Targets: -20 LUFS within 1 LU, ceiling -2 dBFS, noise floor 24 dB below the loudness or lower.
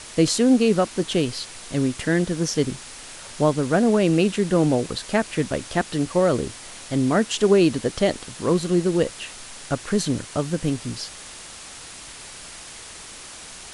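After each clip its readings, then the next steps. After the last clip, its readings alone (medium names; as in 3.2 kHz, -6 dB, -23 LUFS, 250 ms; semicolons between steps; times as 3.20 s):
noise floor -40 dBFS; noise floor target -46 dBFS; loudness -22.0 LUFS; peak level -6.0 dBFS; loudness target -20.0 LUFS
-> noise reduction 6 dB, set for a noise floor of -40 dBFS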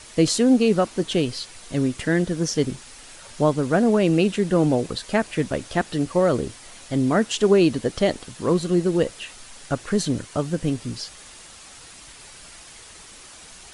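noise floor -45 dBFS; noise floor target -46 dBFS
-> noise reduction 6 dB, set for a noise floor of -45 dBFS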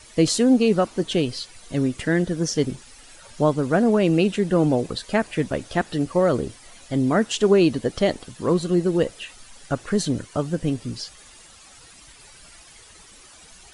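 noise floor -48 dBFS; loudness -22.0 LUFS; peak level -6.0 dBFS; loudness target -20.0 LUFS
-> trim +2 dB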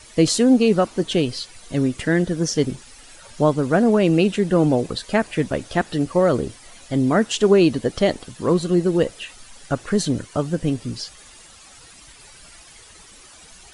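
loudness -20.0 LUFS; peak level -4.0 dBFS; noise floor -46 dBFS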